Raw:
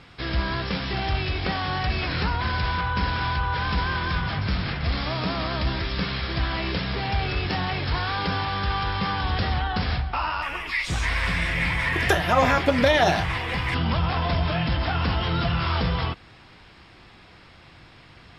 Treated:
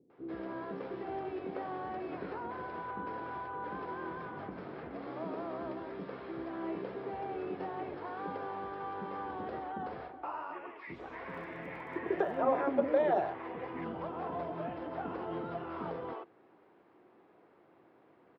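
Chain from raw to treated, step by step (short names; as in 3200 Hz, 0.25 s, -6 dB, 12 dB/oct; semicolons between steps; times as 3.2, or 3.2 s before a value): ladder band-pass 440 Hz, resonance 45%; bands offset in time lows, highs 0.1 s, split 390 Hz; 11.26–12.36 crackle 43/s -58 dBFS; gain +5 dB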